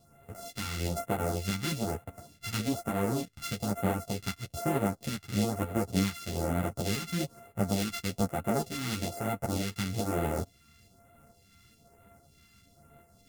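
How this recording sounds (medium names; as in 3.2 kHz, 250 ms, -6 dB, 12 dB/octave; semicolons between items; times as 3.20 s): a buzz of ramps at a fixed pitch in blocks of 64 samples; phasing stages 2, 1.1 Hz, lowest notch 570–4800 Hz; tremolo saw up 2.3 Hz, depth 35%; a shimmering, thickened sound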